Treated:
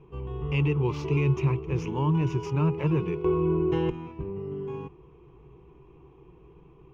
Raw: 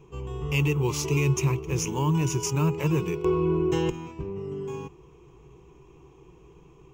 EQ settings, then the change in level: air absorption 330 m; 0.0 dB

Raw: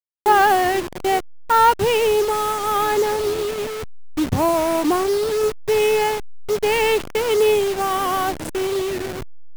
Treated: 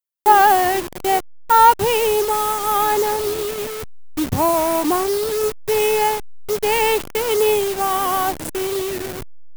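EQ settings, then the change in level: dynamic EQ 880 Hz, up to +5 dB, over -28 dBFS, Q 2.6; high shelf 8700 Hz +11.5 dB; -1.0 dB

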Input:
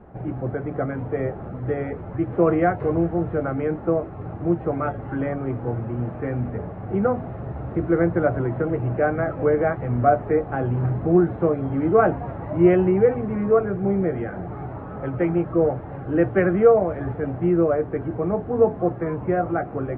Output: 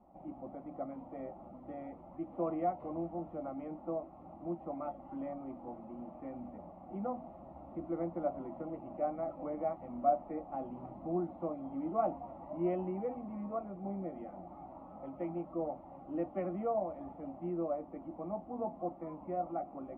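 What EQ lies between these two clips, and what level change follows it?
LPF 1200 Hz 6 dB/oct; low shelf 280 Hz -11.5 dB; fixed phaser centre 430 Hz, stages 6; -8.0 dB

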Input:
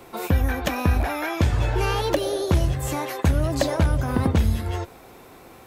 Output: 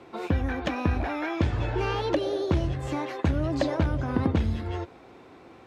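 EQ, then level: HPF 60 Hz; LPF 4200 Hz 12 dB/oct; bell 310 Hz +5 dB 0.59 oct; -4.5 dB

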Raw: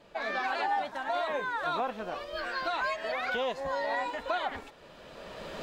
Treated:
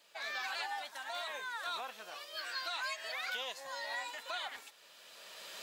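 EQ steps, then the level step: differentiator; +6.5 dB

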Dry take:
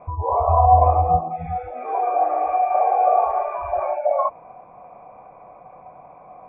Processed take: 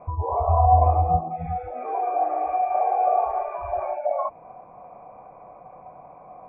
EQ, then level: dynamic EQ 530 Hz, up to -6 dB, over -33 dBFS, Q 3.5; high shelf 2000 Hz -7.5 dB; dynamic EQ 1100 Hz, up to -5 dB, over -34 dBFS, Q 1.7; 0.0 dB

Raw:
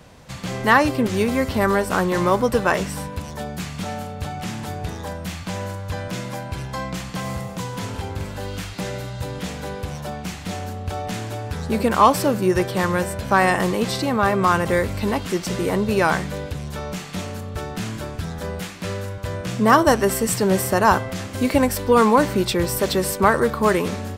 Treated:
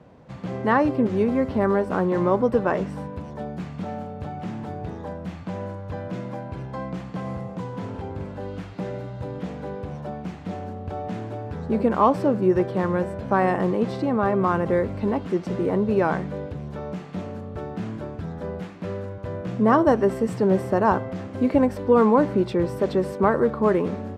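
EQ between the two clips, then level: band-pass 310 Hz, Q 0.52; 0.0 dB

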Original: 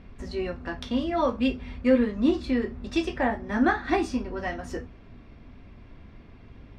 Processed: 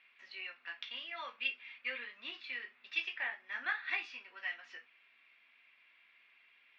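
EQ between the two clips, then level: ladder band-pass 2900 Hz, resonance 45%; air absorption 210 m; +10.0 dB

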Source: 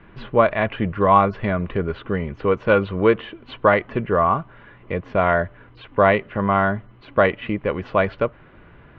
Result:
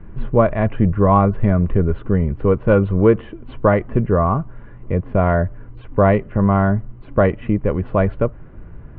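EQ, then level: air absorption 210 m; tilt -3.5 dB/oct; -1.0 dB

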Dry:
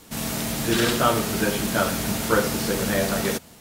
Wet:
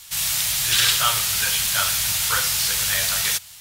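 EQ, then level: EQ curve 100 Hz 0 dB, 160 Hz -7 dB, 250 Hz -28 dB, 910 Hz -1 dB, 3300 Hz +13 dB; -3.5 dB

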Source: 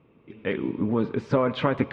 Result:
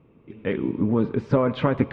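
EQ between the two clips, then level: tilt -1.5 dB/oct; 0.0 dB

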